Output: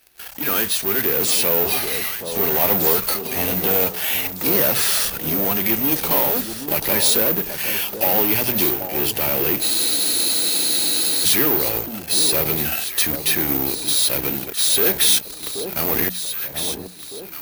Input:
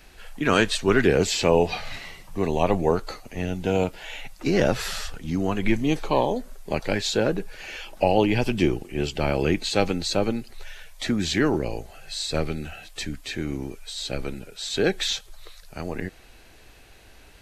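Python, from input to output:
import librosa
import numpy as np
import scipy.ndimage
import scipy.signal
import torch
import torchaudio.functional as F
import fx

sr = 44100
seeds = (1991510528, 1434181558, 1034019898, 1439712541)

p1 = fx.low_shelf(x, sr, hz=150.0, db=-7.0)
p2 = fx.fuzz(p1, sr, gain_db=39.0, gate_db=-44.0)
p3 = p1 + (p2 * 10.0 ** (-4.0 / 20.0))
p4 = scipy.signal.sosfilt(scipy.signal.butter(2, 48.0, 'highpass', fs=sr, output='sos'), p3)
p5 = fx.high_shelf(p4, sr, hz=3900.0, db=7.5)
p6 = fx.hum_notches(p5, sr, base_hz=60, count=5)
p7 = (np.kron(scipy.signal.resample_poly(p6, 1, 3), np.eye(3)[0]) * 3)[:len(p6)]
p8 = p7 + fx.echo_alternate(p7, sr, ms=780, hz=1000.0, feedback_pct=58, wet_db=-8, dry=0)
p9 = fx.rider(p8, sr, range_db=5, speed_s=2.0)
p10 = fx.spec_freeze(p9, sr, seeds[0], at_s=9.64, hold_s=1.62)
y = p10 * 10.0 ** (-8.5 / 20.0)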